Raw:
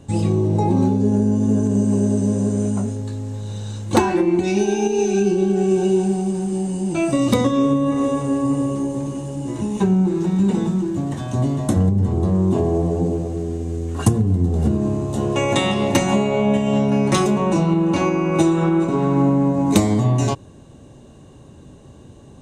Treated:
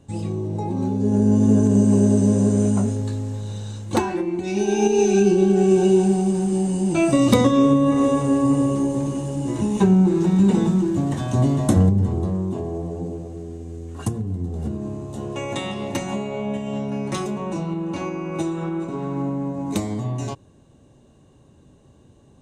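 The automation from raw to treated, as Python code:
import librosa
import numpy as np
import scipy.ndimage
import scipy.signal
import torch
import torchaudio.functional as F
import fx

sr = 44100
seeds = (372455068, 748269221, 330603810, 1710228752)

y = fx.gain(x, sr, db=fx.line((0.75, -8.0), (1.33, 2.0), (3.07, 2.0), (4.38, -8.0), (4.83, 1.5), (11.82, 1.5), (12.56, -9.0)))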